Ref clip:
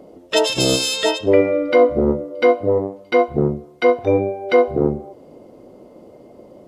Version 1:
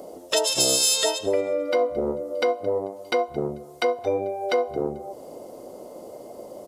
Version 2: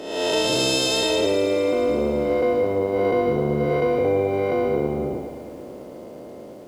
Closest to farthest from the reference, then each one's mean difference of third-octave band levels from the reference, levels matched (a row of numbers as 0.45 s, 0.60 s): 1, 2; 5.5 dB, 9.5 dB